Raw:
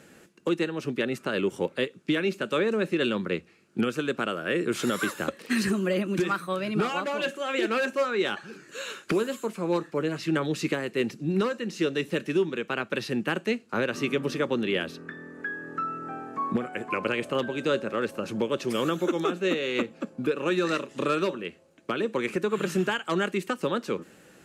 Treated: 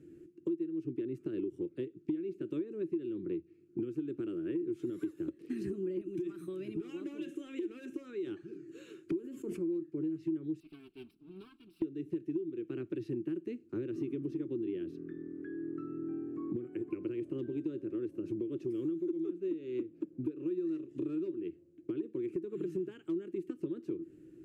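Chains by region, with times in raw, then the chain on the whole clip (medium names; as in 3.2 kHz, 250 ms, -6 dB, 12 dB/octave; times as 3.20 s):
6.01–8.27 s: band-stop 4.5 kHz, Q 6.8 + compression 4:1, threshold -31 dBFS + treble shelf 2 kHz +10 dB
9.19–9.70 s: band-stop 3.9 kHz, Q 5.7 + decay stretcher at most 48 dB/s
10.60–11.82 s: comb filter that takes the minimum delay 4.5 ms + high-pass 1.2 kHz 6 dB/octave + static phaser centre 1.9 kHz, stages 6
whole clip: FFT filter 140 Hz 0 dB, 220 Hz -12 dB, 330 Hz +11 dB, 500 Hz -18 dB, 800 Hz -29 dB, 1.5 kHz -24 dB, 2.5 kHz -21 dB, 4.2 kHz -25 dB, 11 kHz -22 dB; compression 5:1, threshold -34 dBFS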